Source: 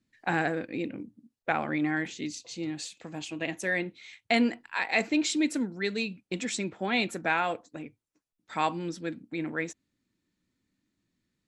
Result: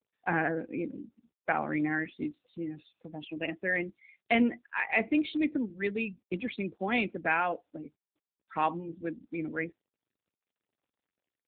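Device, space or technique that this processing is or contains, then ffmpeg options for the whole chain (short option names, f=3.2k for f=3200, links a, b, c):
mobile call with aggressive noise cancelling: -af "highpass=f=100:p=1,afftdn=nr=22:nf=-38" -ar 8000 -c:a libopencore_amrnb -b:a 7950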